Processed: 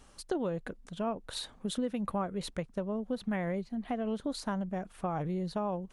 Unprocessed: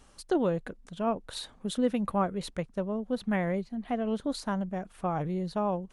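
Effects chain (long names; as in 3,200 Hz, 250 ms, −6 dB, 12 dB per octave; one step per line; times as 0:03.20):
downward compressor 4 to 1, threshold −30 dBFS, peak gain reduction 8.5 dB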